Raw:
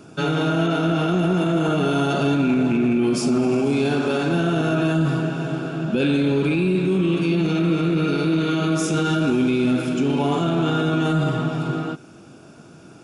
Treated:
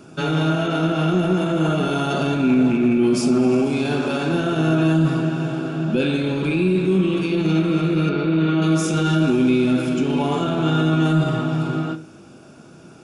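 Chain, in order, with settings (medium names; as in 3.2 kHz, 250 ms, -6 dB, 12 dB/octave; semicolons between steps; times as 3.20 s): 8.09–8.62 s: low-pass 2.9 kHz 12 dB/octave; reverberation RT60 0.40 s, pre-delay 3 ms, DRR 9.5 dB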